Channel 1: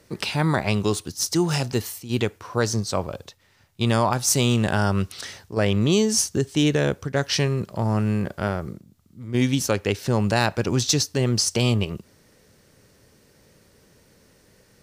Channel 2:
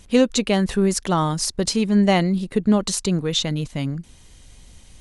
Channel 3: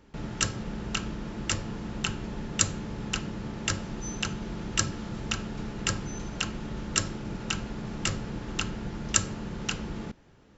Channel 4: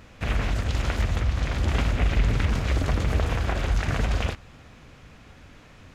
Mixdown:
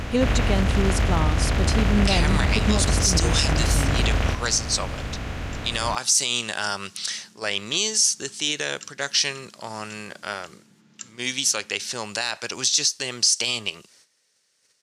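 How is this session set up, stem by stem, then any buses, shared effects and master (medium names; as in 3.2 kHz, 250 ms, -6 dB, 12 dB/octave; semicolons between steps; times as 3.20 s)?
-3.0 dB, 1.85 s, no send, gate -53 dBFS, range -13 dB; frequency weighting ITU-R 468
-6.0 dB, 0.00 s, no send, none
-14.0 dB, 1.85 s, no send, high-pass 170 Hz 24 dB/octave; peaking EQ 600 Hz -12.5 dB 2.2 oct
-1.5 dB, 0.00 s, no send, spectral levelling over time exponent 0.4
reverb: none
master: peak limiter -9 dBFS, peak gain reduction 9.5 dB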